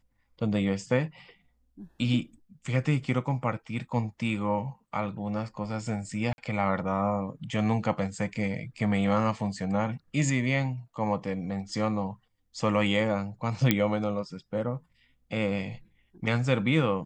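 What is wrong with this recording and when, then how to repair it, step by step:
0:06.33–0:06.38: drop-out 51 ms
0:13.71: click −7 dBFS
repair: click removal
repair the gap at 0:06.33, 51 ms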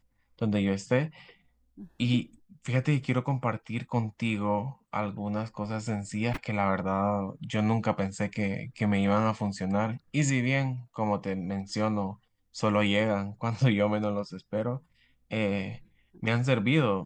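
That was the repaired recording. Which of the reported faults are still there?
none of them is left

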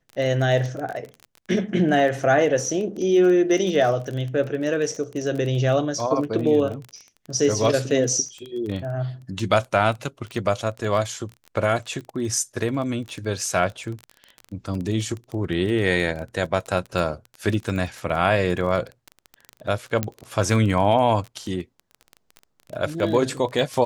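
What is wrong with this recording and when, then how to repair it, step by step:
surface crackle 20 per second −28 dBFS
0:20.03: click −8 dBFS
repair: click removal

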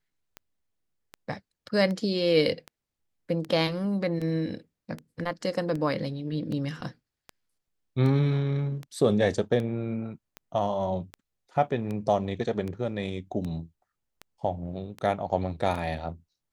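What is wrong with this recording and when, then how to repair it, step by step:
scratch tick 78 rpm −23 dBFS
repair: click removal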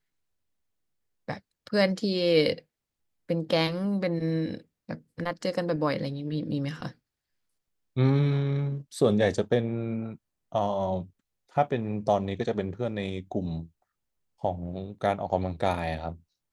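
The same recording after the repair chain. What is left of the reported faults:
none of them is left

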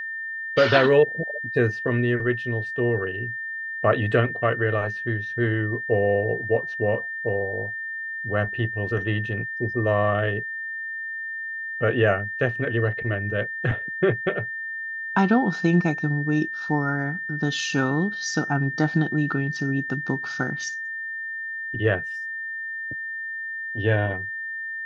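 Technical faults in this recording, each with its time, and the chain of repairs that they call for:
whistle 1,800 Hz −29 dBFS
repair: notch filter 1,800 Hz, Q 30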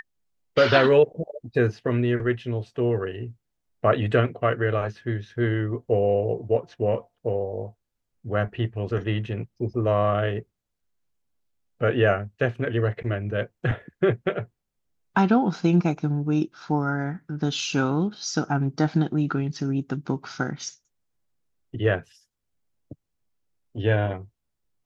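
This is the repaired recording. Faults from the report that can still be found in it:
none of them is left

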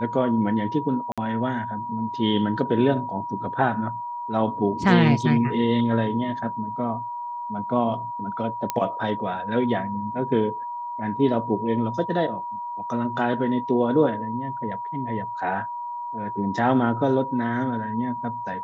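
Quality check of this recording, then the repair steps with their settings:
whistle 960 Hz −29 dBFS
0:01.12–0:01.18: drop-out 56 ms
0:08.70: click −9 dBFS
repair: click removal
notch filter 960 Hz, Q 30
repair the gap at 0:01.12, 56 ms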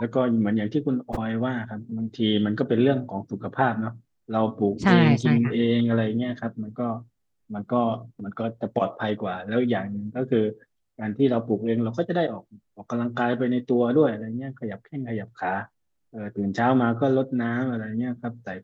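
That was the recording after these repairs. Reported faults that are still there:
none of them is left

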